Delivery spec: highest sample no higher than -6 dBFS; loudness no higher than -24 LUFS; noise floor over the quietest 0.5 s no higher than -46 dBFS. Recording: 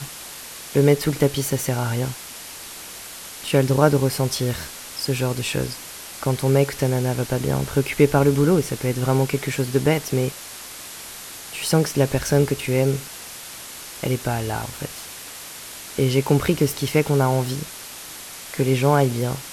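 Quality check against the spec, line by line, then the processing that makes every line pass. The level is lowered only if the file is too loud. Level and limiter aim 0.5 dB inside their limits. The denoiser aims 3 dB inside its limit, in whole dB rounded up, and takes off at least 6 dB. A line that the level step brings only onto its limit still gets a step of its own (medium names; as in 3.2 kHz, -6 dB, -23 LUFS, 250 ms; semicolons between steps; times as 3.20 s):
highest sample -3.0 dBFS: fail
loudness -21.5 LUFS: fail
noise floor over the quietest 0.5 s -37 dBFS: fail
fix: noise reduction 9 dB, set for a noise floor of -37 dBFS; trim -3 dB; peak limiter -6.5 dBFS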